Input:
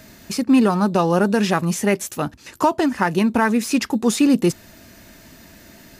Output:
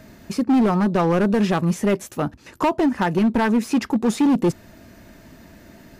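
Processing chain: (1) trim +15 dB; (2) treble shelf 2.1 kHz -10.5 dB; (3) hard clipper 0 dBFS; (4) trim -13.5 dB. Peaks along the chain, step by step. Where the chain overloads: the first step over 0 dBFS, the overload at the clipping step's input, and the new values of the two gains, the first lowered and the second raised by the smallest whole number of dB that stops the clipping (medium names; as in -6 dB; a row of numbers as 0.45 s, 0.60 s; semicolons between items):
+9.5 dBFS, +8.5 dBFS, 0.0 dBFS, -13.5 dBFS; step 1, 8.5 dB; step 1 +6 dB, step 4 -4.5 dB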